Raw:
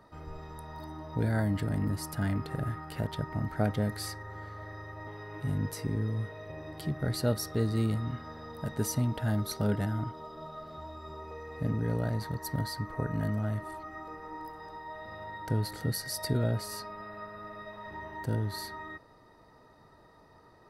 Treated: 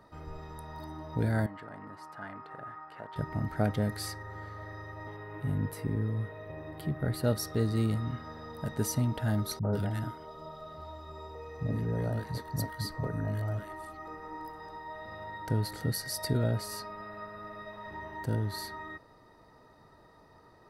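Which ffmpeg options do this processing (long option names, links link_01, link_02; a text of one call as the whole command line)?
ffmpeg -i in.wav -filter_complex "[0:a]asettb=1/sr,asplit=3[link_01][link_02][link_03];[link_01]atrim=end=1.464[link_04];[link_02]atrim=start=1.46:end=3.16,asetpts=PTS-STARTPTS,afade=type=in:duration=0.004:curve=qsin,afade=type=out:start_time=1.696:duration=0.004:curve=qsin,bandpass=frequency=1100:width_type=q:width=1.4[link_05];[link_03]atrim=start=3.156[link_06];[link_04][link_05]acrossfade=duration=0.004:curve1=hsin:curve2=qsin[link_07];[link_07][link_06]acrossfade=duration=0.004:curve1=qsin:curve2=hsin,asettb=1/sr,asplit=3[link_08][link_09][link_10];[link_08]atrim=end=5.164[link_11];[link_09]atrim=start=5.16:end=7.24,asetpts=PTS-STARTPTS,afade=type=in:duration=0.004:curve=qsin,afade=type=out:start_time=2.076:duration=0.004:curve=qsin,equalizer=frequency=5900:width_type=o:width=1.1:gain=-11.5[link_12];[link_10]atrim=start=7.236[link_13];[link_11][link_12]acrossfade=duration=0.004:curve1=hsin:curve2=qsin[link_14];[link_14][link_13]acrossfade=duration=0.004:curve1=qsin:curve2=hsin,asettb=1/sr,asplit=3[link_15][link_16][link_17];[link_15]atrim=end=9.594[link_18];[link_16]atrim=start=9.59:end=14.06,asetpts=PTS-STARTPTS,afade=type=in:duration=0.004:curve=qsin,afade=type=out:start_time=4.466:duration=0.004:curve=qsin,acrossover=split=220|1400[link_19][link_20][link_21];[link_20]adelay=40[link_22];[link_21]adelay=140[link_23];[link_19][link_22][link_23]amix=inputs=3:normalize=0,atrim=end_sample=197127[link_24];[link_17]atrim=start=14.056[link_25];[link_18][link_24]acrossfade=duration=0.004:curve1=hsin:curve2=qsin[link_26];[link_26][link_25]acrossfade=duration=0.004:curve1=qsin:curve2=hsin" out.wav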